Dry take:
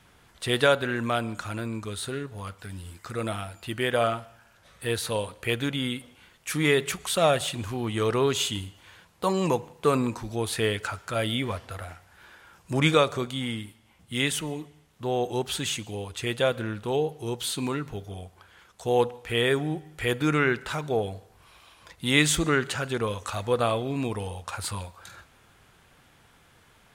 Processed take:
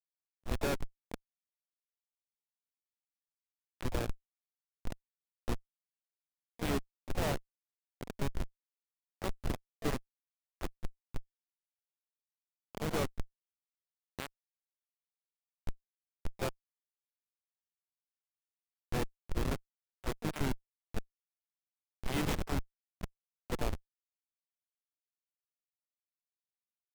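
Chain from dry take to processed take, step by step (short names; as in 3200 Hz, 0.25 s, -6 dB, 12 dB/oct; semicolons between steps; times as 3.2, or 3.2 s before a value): delay with a stepping band-pass 0.115 s, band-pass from 3400 Hz, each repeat -1.4 oct, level -9 dB; Schmitt trigger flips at -17.5 dBFS; harmoniser -7 st -7 dB, +5 st -13 dB, +7 st -11 dB; gain -4 dB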